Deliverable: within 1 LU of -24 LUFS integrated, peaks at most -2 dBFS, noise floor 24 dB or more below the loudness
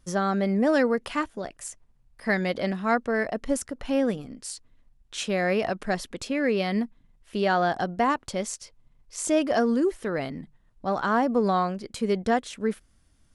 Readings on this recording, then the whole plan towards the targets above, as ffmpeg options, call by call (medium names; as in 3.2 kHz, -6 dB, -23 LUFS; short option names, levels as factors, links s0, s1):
loudness -26.5 LUFS; peak level -10.0 dBFS; loudness target -24.0 LUFS
-> -af "volume=1.33"